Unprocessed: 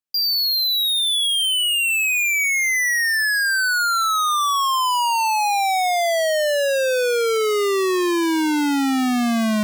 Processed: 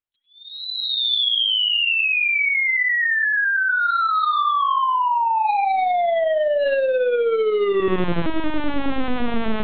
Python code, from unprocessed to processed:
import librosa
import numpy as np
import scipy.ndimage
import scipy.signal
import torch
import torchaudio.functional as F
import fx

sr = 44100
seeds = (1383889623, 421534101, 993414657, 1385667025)

y = fx.echo_feedback(x, sr, ms=99, feedback_pct=18, wet_db=-4.0)
y = fx.lpc_vocoder(y, sr, seeds[0], excitation='pitch_kept', order=10)
y = y * librosa.db_to_amplitude(-1.0)